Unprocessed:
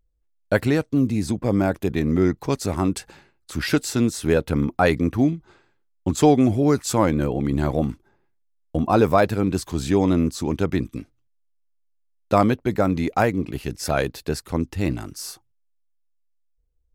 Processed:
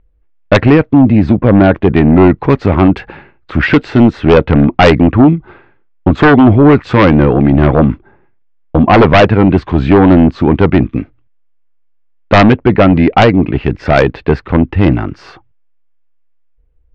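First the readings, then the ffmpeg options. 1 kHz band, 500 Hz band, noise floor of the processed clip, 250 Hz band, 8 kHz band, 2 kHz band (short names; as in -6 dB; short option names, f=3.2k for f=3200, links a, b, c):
+12.5 dB, +12.0 dB, -50 dBFS, +13.0 dB, n/a, +14.5 dB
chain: -af "lowpass=f=2.6k:w=0.5412,lowpass=f=2.6k:w=1.3066,aeval=exprs='0.668*sin(PI/2*3.16*val(0)/0.668)':c=same,volume=2.5dB"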